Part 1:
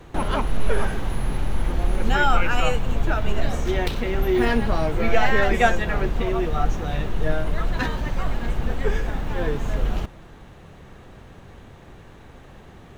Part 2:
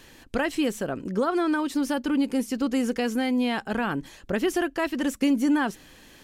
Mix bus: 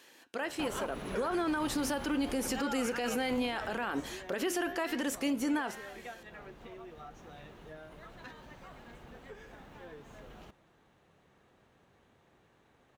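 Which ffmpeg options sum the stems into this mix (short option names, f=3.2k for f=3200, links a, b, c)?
-filter_complex "[0:a]highpass=f=240:p=1,acompressor=threshold=-29dB:ratio=2.5,adelay=450,volume=-7.5dB,afade=t=out:st=3.69:d=0.52:silence=0.316228[a];[1:a]dynaudnorm=f=270:g=11:m=11dB,flanger=delay=7.7:depth=6.4:regen=-83:speed=0.75:shape=triangular,highpass=370,volume=-2dB[b];[a][b]amix=inputs=2:normalize=0,alimiter=level_in=0.5dB:limit=-24dB:level=0:latency=1:release=51,volume=-0.5dB"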